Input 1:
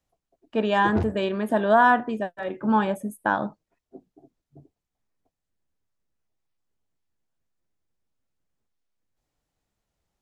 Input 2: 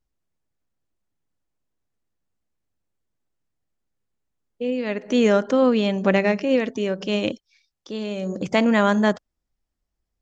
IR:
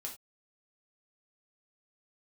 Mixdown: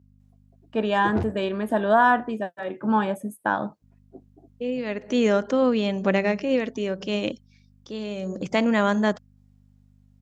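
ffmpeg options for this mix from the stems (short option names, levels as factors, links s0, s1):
-filter_complex "[0:a]adelay=200,volume=0.944[s0];[1:a]aeval=exprs='val(0)+0.00355*(sin(2*PI*50*n/s)+sin(2*PI*2*50*n/s)/2+sin(2*PI*3*50*n/s)/3+sin(2*PI*4*50*n/s)/4+sin(2*PI*5*50*n/s)/5)':c=same,volume=0.708,asplit=3[s1][s2][s3];[s1]atrim=end=2.34,asetpts=PTS-STARTPTS,afade=t=out:st=2.336:d=0.004:c=hsin[s4];[s2]atrim=start=2.34:end=3.82,asetpts=PTS-STARTPTS,volume=0[s5];[s3]atrim=start=3.82,asetpts=PTS-STARTPTS,afade=t=in:d=0.004:c=hsin[s6];[s4][s5][s6]concat=n=3:v=0:a=1[s7];[s0][s7]amix=inputs=2:normalize=0,highpass=70"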